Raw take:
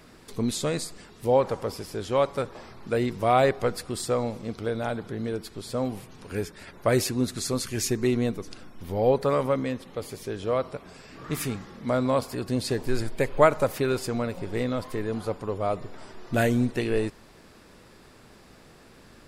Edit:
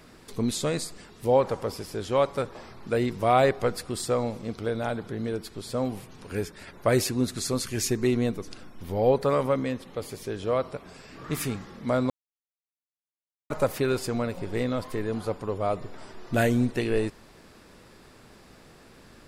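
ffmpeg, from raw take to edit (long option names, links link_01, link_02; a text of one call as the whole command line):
ffmpeg -i in.wav -filter_complex "[0:a]asplit=3[link_01][link_02][link_03];[link_01]atrim=end=12.1,asetpts=PTS-STARTPTS,afade=type=out:start_time=12.096:duration=0.004:curve=hsin[link_04];[link_02]atrim=start=12.1:end=13.5,asetpts=PTS-STARTPTS,volume=0[link_05];[link_03]atrim=start=13.5,asetpts=PTS-STARTPTS,afade=type=in:duration=0.004:curve=hsin[link_06];[link_04][link_05][link_06]concat=n=3:v=0:a=1" out.wav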